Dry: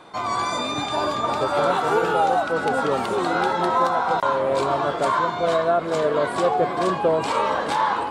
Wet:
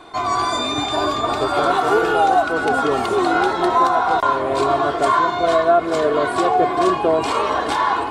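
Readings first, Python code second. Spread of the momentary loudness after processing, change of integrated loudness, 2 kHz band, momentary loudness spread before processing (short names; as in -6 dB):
4 LU, +4.0 dB, +4.5 dB, 4 LU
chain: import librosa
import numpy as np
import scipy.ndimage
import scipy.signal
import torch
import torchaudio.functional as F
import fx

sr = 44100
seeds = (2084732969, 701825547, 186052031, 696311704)

y = fx.low_shelf(x, sr, hz=67.0, db=8.0)
y = y + 0.57 * np.pad(y, (int(2.8 * sr / 1000.0), 0))[:len(y)]
y = y * librosa.db_to_amplitude(2.5)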